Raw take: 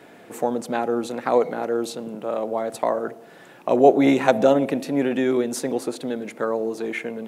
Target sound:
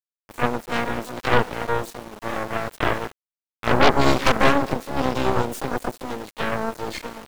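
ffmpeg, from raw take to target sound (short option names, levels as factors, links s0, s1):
-filter_complex "[0:a]asplit=4[s0][s1][s2][s3];[s1]asetrate=55563,aresample=44100,atempo=0.793701,volume=0.282[s4];[s2]asetrate=66075,aresample=44100,atempo=0.66742,volume=0.501[s5];[s3]asetrate=88200,aresample=44100,atempo=0.5,volume=0.708[s6];[s0][s4][s5][s6]amix=inputs=4:normalize=0,aeval=exprs='val(0)*gte(abs(val(0)),0.0376)':c=same,aeval=exprs='1.26*(cos(1*acos(clip(val(0)/1.26,-1,1)))-cos(1*PI/2))+0.447*(cos(8*acos(clip(val(0)/1.26,-1,1)))-cos(8*PI/2))':c=same,volume=0.422"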